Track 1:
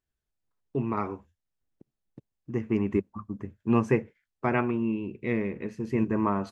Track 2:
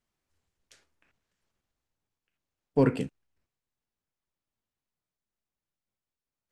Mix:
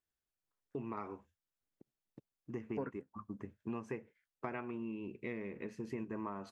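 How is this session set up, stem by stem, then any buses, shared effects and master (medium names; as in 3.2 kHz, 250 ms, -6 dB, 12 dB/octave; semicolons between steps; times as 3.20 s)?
-4.5 dB, 0.00 s, no send, none
+2.0 dB, 0.00 s, no send, resonant high shelf 2.2 kHz -13 dB, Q 3; upward expansion 2.5:1, over -37 dBFS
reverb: none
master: bass shelf 170 Hz -9 dB; compression 6:1, threshold -38 dBFS, peak gain reduction 19 dB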